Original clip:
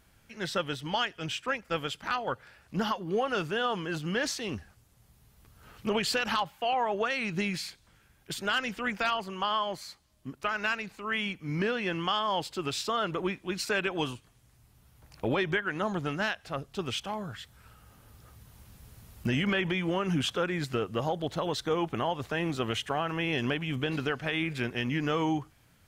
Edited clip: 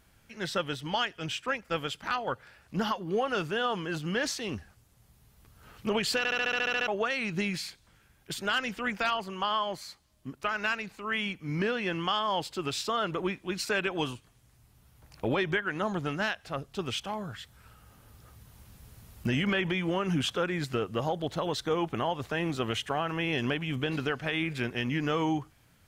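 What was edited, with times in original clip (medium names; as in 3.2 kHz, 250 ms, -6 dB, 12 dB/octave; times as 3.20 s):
6.18 s: stutter in place 0.07 s, 10 plays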